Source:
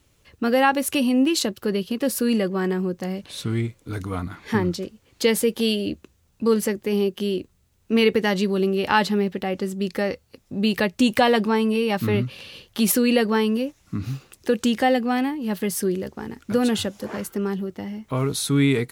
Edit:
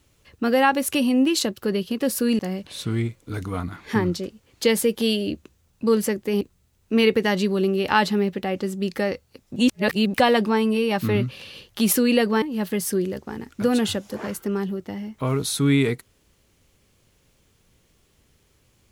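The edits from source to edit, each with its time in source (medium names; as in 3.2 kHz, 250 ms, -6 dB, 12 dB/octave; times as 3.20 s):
2.39–2.98 s: delete
7.00–7.40 s: delete
10.55–11.13 s: reverse
13.41–15.32 s: delete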